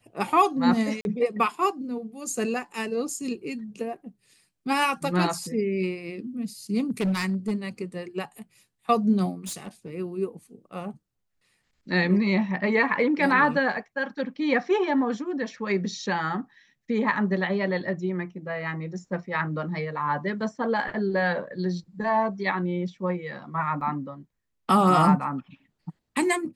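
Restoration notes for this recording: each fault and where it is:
0:01.01–0:01.05: drop-out 41 ms
0:06.90–0:07.66: clipping −21 dBFS
0:09.45–0:09.90: clipping −30.5 dBFS
0:23.81: drop-out 3.7 ms

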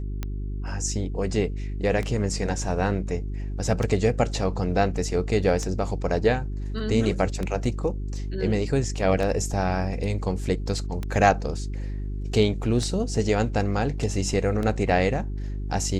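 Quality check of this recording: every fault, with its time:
mains hum 50 Hz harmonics 8 −30 dBFS
scratch tick 33 1/3 rpm −16 dBFS

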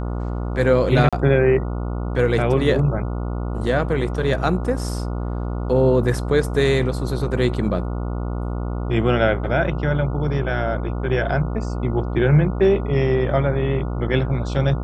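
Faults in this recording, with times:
mains buzz 60 Hz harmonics 24 −25 dBFS
0:01.09–0:01.13: drop-out 36 ms

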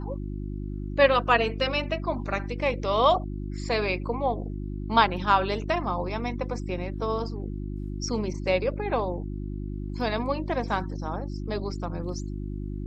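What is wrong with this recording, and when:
mains hum 50 Hz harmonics 7 −33 dBFS

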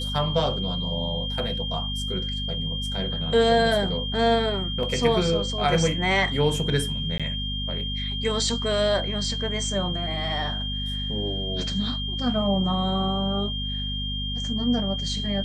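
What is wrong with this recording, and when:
mains hum 50 Hz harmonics 5 −31 dBFS
whistle 3,200 Hz −30 dBFS
0:04.83: drop-out 2.6 ms
0:07.18–0:07.20: drop-out 16 ms

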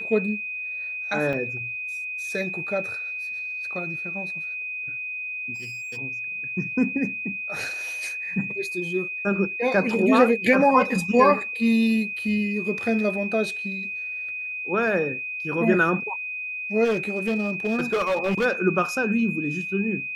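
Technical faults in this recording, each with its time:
whistle 2,500 Hz −29 dBFS
0:01.33: drop-out 4 ms
0:05.54–0:05.98: clipping −32.5 dBFS
0:16.84–0:18.46: clipping −19 dBFS

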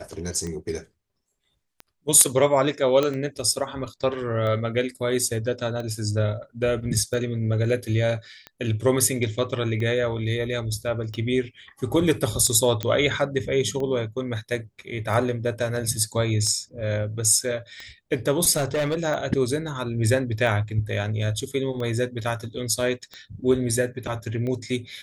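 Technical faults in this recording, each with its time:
scratch tick 45 rpm −21 dBFS
0:03.03: click −10 dBFS
0:12.83: click −11 dBFS
0:18.56–0:19.04: clipping −20 dBFS

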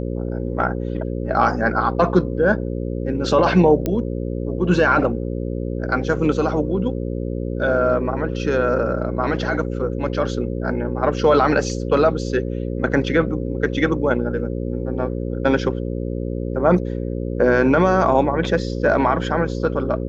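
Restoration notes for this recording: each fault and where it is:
mains buzz 60 Hz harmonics 9 −25 dBFS
0:03.86: click −9 dBFS

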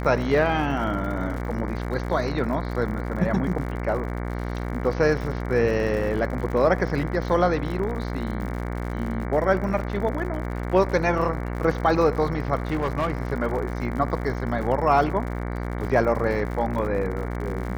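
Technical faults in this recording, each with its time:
mains buzz 60 Hz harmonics 38 −29 dBFS
surface crackle 88 per second −33 dBFS
0:12.70–0:13.33: clipping −19.5 dBFS

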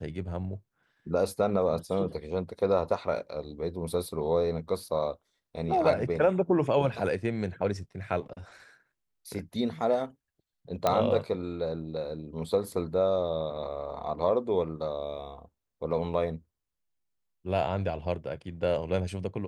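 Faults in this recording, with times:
0:10.87: click −11 dBFS

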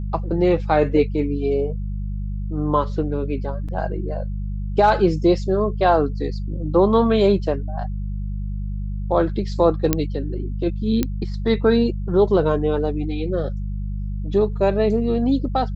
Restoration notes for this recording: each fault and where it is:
mains hum 50 Hz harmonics 4 −26 dBFS
0:03.68–0:03.69: drop-out 6.1 ms
0:09.93: click −2 dBFS
0:11.03: click −7 dBFS

